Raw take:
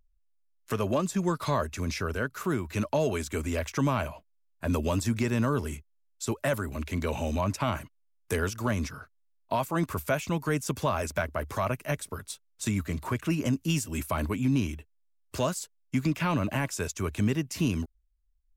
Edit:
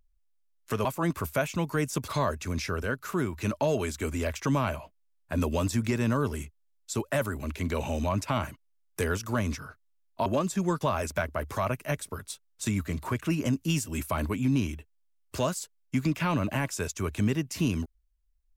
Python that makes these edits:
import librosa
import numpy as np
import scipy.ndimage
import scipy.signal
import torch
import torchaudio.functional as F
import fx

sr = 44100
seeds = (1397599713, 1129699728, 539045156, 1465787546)

y = fx.edit(x, sr, fx.swap(start_s=0.85, length_s=0.55, other_s=9.58, other_length_s=1.23), tone=tone)